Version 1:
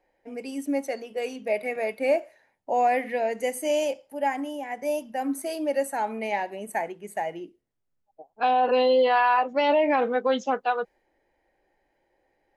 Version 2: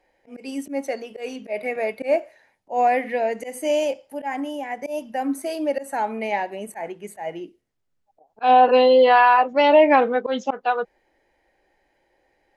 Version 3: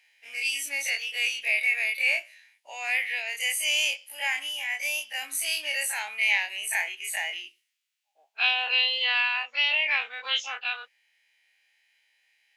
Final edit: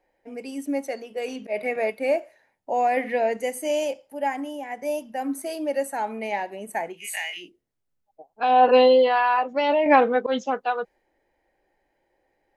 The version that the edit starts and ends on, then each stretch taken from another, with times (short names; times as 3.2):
1
1.28–1.9 from 2
2.97–3.37 from 2
7–7.43 from 3, crossfade 0.16 s
8.57–8.98 from 2, crossfade 0.24 s
9.86–10.39 from 2